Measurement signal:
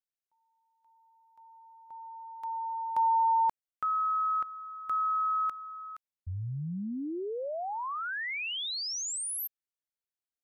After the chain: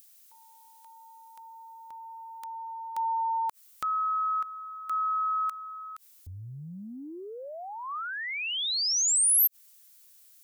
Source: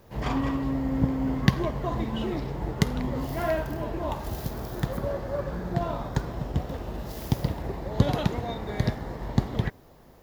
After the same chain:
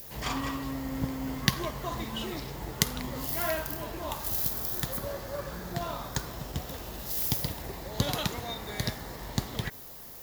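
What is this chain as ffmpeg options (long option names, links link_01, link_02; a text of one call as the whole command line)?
ffmpeg -i in.wav -af "crystalizer=i=8:c=0,adynamicequalizer=threshold=0.0158:dfrequency=1200:dqfactor=2.9:tfrequency=1200:tqfactor=2.9:attack=5:release=100:ratio=0.375:range=2:mode=boostabove:tftype=bell,acompressor=mode=upward:threshold=-30dB:ratio=2.5:attack=4.3:release=46:knee=2.83:detection=peak,volume=-8dB" out.wav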